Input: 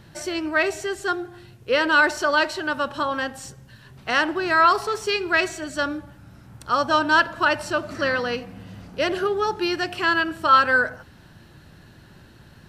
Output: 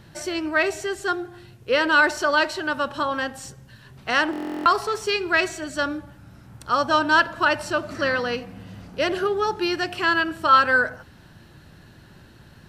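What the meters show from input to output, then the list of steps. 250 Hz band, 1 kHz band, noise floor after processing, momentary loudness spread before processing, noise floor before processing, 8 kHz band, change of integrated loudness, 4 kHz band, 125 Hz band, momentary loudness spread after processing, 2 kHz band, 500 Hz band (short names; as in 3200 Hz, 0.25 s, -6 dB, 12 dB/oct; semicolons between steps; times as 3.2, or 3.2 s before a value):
0.0 dB, -0.5 dB, -49 dBFS, 14 LU, -49 dBFS, 0.0 dB, -0.5 dB, 0.0 dB, 0.0 dB, 14 LU, -0.5 dB, 0.0 dB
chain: stuck buffer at 4.31, samples 1024, times 14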